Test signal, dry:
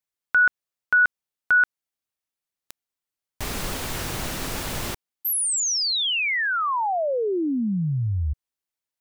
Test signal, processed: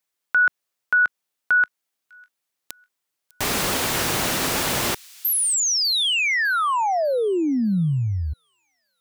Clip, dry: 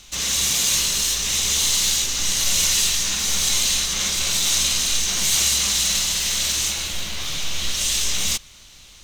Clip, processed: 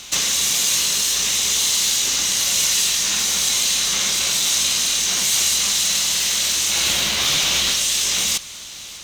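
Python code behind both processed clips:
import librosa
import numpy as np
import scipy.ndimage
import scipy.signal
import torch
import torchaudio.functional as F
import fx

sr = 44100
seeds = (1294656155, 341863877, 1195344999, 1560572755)

p1 = fx.highpass(x, sr, hz=220.0, slope=6)
p2 = fx.over_compress(p1, sr, threshold_db=-28.0, ratio=-0.5)
p3 = p1 + (p2 * 10.0 ** (-0.5 / 20.0))
y = fx.echo_wet_highpass(p3, sr, ms=601, feedback_pct=37, hz=3100.0, wet_db=-19.5)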